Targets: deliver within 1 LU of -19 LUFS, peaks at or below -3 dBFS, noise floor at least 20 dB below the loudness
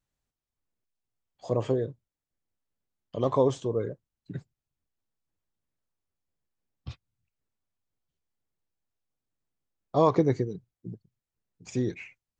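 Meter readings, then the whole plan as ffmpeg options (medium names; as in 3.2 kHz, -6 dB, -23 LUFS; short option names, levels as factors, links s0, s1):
loudness -28.0 LUFS; peak level -9.5 dBFS; loudness target -19.0 LUFS
-> -af "volume=2.82,alimiter=limit=0.708:level=0:latency=1"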